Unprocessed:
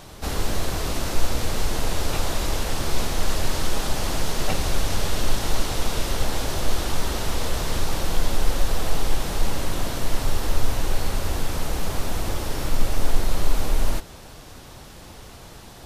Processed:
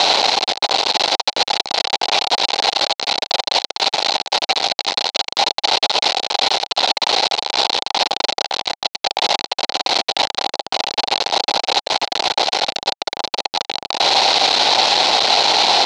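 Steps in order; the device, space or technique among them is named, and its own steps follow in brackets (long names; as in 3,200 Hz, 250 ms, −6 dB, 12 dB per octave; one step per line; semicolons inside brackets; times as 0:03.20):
home computer beeper (sign of each sample alone; loudspeaker in its box 630–5,100 Hz, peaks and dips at 800 Hz +9 dB, 1,200 Hz −8 dB, 1,700 Hz −8 dB, 4,100 Hz +9 dB)
level +6.5 dB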